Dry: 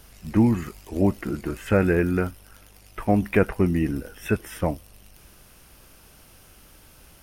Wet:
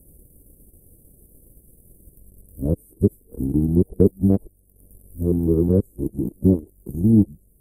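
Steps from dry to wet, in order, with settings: whole clip reversed; inverse Chebyshev band-stop 1300–4700 Hz, stop band 60 dB; transient shaper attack +4 dB, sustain -9 dB; varispeed -5%; gain +2.5 dB

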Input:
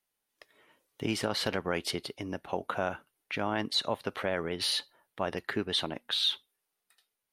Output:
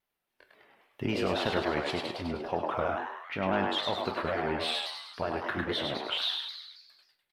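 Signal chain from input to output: repeated pitch sweeps -3 st, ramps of 0.475 s; bell 330 Hz -3.5 dB 0.32 oct; in parallel at -8.5 dB: soft clip -28 dBFS, distortion -11 dB; on the sum: bell 8200 Hz -14 dB 1.5 oct; frequency-shifting echo 0.102 s, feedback 57%, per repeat +150 Hz, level -4 dB; non-linear reverb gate 0.15 s falling, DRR 8 dB; shaped vibrato saw down 3.7 Hz, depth 100 cents

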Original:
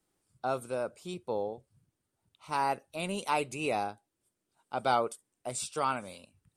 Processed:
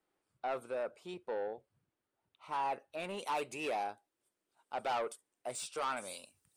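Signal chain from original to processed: soft clip -30 dBFS, distortion -8 dB; tone controls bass -13 dB, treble -13 dB, from 3.19 s treble -5 dB, from 5.96 s treble +8 dB

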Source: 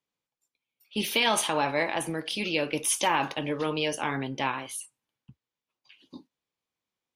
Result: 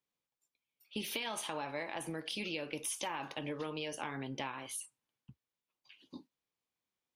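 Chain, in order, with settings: compressor 6:1, threshold -32 dBFS, peak gain reduction 12 dB; gain -4 dB

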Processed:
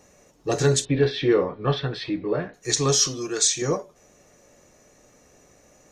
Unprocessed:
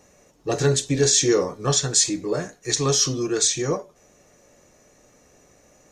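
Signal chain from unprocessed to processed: 0.85–2.54 inverse Chebyshev low-pass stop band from 6400 Hz, stop band 40 dB; 3.07–3.62 low shelf 490 Hz -8 dB

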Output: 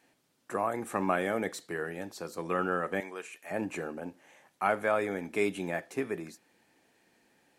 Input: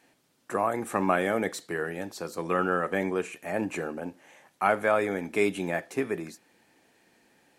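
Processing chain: 3–3.51 HPF 1200 Hz 6 dB/oct; gain -4 dB

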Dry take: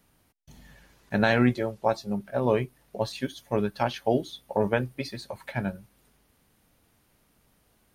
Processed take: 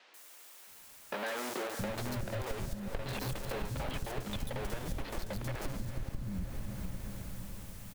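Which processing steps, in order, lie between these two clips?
Bessel low-pass 6000 Hz, order 8; Schmitt trigger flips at -38.5 dBFS; power-law curve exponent 2; low shelf 77 Hz +8 dB; on a send: diffused feedback echo 0.455 s, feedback 57%, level -9.5 dB; on the sum: requantised 10-bit, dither triangular; three bands offset in time mids, highs, lows 0.14/0.67 s, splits 290/4300 Hz; compressor, threshold -40 dBFS, peak gain reduction 15 dB; gain +6.5 dB

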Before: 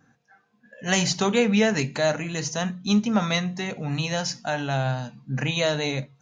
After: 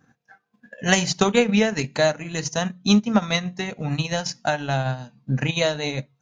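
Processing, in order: transient shaper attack +8 dB, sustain -9 dB

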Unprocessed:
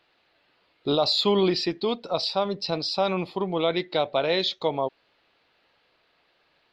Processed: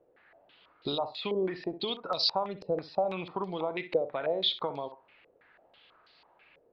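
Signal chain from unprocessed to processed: compressor 10:1, threshold -32 dBFS, peak gain reduction 15 dB; on a send: flutter echo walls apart 10.8 m, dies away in 0.27 s; on the sum: stepped low-pass 6.1 Hz 500–4600 Hz

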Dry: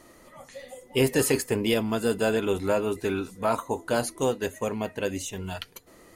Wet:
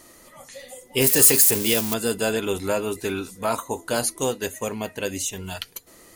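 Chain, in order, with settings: 1.01–1.94 switching spikes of -21 dBFS; high shelf 3300 Hz +10.5 dB

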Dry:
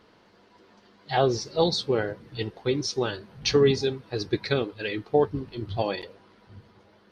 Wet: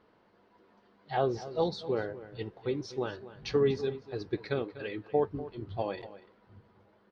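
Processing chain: LPF 1100 Hz 6 dB/oct; low shelf 410 Hz -5.5 dB; outdoor echo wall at 42 m, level -15 dB; gain -3 dB

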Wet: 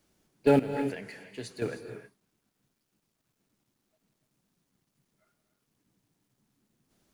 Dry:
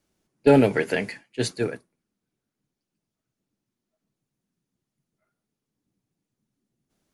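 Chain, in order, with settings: G.711 law mismatch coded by mu; 0.59–1.62 compressor 6:1, threshold -31 dBFS, peak gain reduction 16 dB; non-linear reverb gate 0.34 s rising, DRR 8 dB; gain -6 dB

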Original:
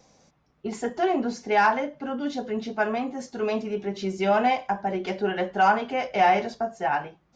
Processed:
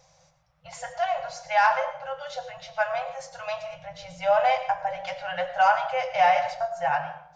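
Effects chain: 3.74–4.4 tilt shelf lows +4.5 dB, about 910 Hz; reverb RT60 0.70 s, pre-delay 60 ms, DRR 10 dB; FFT band-reject 180–490 Hz

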